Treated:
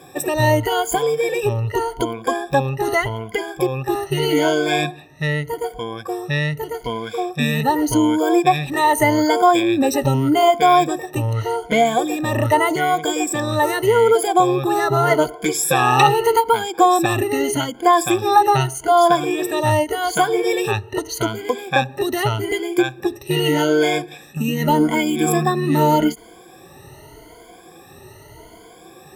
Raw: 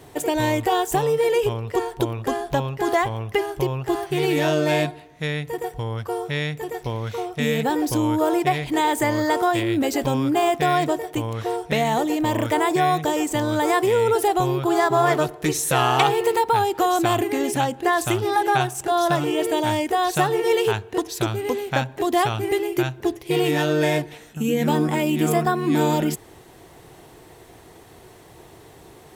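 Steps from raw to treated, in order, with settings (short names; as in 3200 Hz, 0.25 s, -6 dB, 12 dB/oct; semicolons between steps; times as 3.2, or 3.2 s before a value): moving spectral ripple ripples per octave 1.8, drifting +0.83 Hz, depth 23 dB; ending taper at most 320 dB/s; gain -1.5 dB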